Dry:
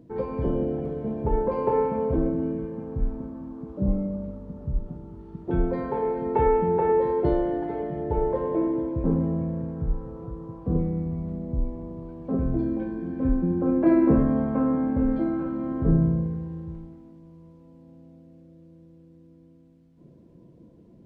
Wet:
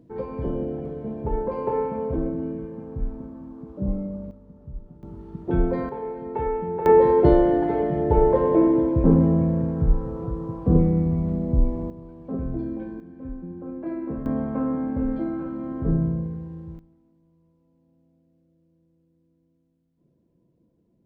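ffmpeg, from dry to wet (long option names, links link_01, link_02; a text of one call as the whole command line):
ffmpeg -i in.wav -af "asetnsamples=nb_out_samples=441:pad=0,asendcmd='4.31 volume volume -9.5dB;5.03 volume volume 2.5dB;5.89 volume volume -5.5dB;6.86 volume volume 7dB;11.9 volume volume -3.5dB;13 volume volume -12dB;14.26 volume volume -2dB;16.79 volume volume -14dB',volume=-2dB" out.wav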